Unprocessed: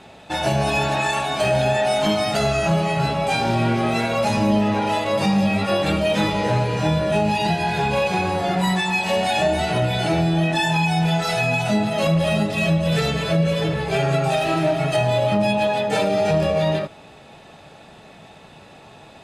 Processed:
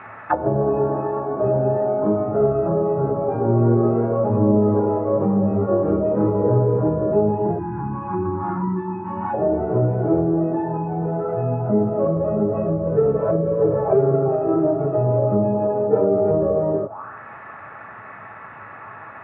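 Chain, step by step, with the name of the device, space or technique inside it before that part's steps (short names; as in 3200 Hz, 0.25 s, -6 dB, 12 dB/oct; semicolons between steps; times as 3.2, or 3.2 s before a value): spectral gain 7.59–9.34, 380–820 Hz -29 dB; band shelf 1100 Hz +8 dB; envelope filter bass rig (envelope low-pass 420–2300 Hz down, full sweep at -15.5 dBFS; speaker cabinet 61–2400 Hz, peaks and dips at 64 Hz -8 dB, 110 Hz +9 dB, 160 Hz -7 dB, 740 Hz -7 dB, 1200 Hz +9 dB, 1900 Hz -4 dB); gain -1 dB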